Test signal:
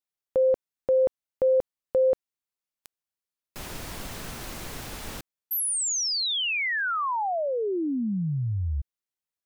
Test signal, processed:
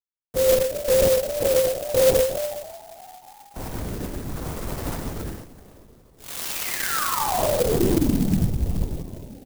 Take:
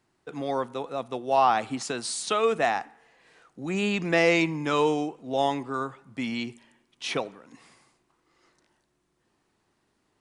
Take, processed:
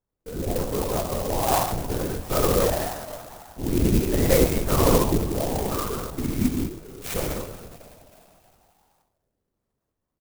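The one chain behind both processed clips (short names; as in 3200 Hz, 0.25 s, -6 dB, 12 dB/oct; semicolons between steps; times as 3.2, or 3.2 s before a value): LPF 1200 Hz 6 dB/oct; gate -54 dBFS, range -17 dB; in parallel at +2 dB: compressor, threshold -35 dBFS; on the sum: rotary speaker horn 0.8 Hz; on a send: frequency-shifting echo 0.322 s, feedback 52%, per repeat +73 Hz, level -16 dB; on the sum: non-linear reverb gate 0.26 s flat, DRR -4 dB; LPC vocoder at 8 kHz whisper; clock jitter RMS 0.099 ms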